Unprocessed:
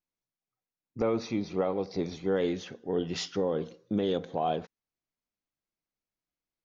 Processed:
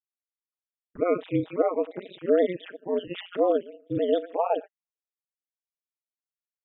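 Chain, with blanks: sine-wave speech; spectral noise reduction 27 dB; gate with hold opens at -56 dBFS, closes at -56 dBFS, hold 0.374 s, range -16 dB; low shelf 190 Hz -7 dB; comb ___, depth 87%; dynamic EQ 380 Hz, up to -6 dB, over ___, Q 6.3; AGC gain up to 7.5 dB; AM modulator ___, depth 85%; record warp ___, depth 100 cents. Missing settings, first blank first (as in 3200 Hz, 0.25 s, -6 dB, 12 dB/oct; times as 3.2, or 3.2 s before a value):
6.3 ms, -44 dBFS, 180 Hz, 45 rpm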